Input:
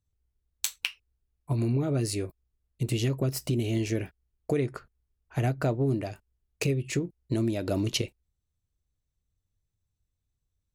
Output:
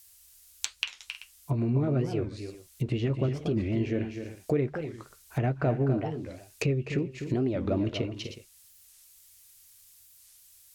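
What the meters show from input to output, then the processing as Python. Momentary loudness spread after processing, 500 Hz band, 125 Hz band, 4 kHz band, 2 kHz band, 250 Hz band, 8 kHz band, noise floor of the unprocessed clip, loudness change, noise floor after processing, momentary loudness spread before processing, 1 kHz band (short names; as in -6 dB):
14 LU, +1.0 dB, 0.0 dB, -3.0 dB, -1.0 dB, +0.5 dB, -6.5 dB, -82 dBFS, -0.5 dB, -58 dBFS, 10 LU, +1.0 dB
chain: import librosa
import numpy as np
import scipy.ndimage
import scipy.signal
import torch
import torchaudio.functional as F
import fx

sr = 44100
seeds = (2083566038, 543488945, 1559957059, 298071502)

y = fx.doubler(x, sr, ms=13.0, db=-13.5)
y = fx.dmg_noise_colour(y, sr, seeds[0], colour='violet', level_db=-51.0)
y = fx.echo_multitap(y, sr, ms=(251, 300, 367), db=(-9.0, -17.5, -18.5))
y = fx.env_lowpass_down(y, sr, base_hz=2200.0, full_db=-26.5)
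y = fx.record_warp(y, sr, rpm=45.0, depth_cents=250.0)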